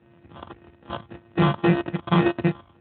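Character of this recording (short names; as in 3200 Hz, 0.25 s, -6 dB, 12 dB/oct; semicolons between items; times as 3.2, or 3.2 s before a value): a buzz of ramps at a fixed pitch in blocks of 128 samples; phasing stages 6, 1.8 Hz, lowest notch 430–1700 Hz; aliases and images of a low sample rate 2200 Hz, jitter 0%; Speex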